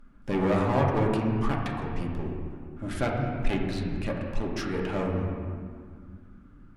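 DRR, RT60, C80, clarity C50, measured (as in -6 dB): -2.0 dB, 2.0 s, 3.5 dB, 2.0 dB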